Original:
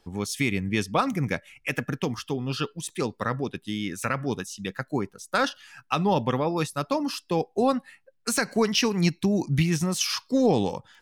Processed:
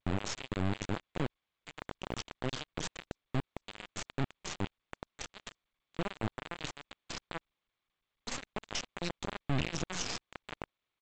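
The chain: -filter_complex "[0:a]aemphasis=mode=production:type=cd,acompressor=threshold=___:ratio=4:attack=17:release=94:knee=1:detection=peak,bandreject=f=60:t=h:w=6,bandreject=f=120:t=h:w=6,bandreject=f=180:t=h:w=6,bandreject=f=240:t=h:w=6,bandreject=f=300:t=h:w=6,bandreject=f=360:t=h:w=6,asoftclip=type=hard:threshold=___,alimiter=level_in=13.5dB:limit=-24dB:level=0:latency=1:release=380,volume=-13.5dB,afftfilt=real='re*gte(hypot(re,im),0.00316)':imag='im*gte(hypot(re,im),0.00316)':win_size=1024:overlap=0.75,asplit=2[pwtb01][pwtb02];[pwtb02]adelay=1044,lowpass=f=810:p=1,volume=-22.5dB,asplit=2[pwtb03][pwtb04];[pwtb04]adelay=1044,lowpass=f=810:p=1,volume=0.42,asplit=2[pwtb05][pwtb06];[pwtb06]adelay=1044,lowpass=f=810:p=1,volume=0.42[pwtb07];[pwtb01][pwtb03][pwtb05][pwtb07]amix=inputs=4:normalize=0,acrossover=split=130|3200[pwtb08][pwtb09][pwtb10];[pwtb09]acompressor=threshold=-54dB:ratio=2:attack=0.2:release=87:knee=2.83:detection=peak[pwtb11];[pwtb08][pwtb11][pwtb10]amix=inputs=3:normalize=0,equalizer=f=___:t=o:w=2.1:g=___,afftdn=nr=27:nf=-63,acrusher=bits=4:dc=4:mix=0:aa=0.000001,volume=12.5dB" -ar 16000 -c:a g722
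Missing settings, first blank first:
-34dB, -27dB, 87, 7.5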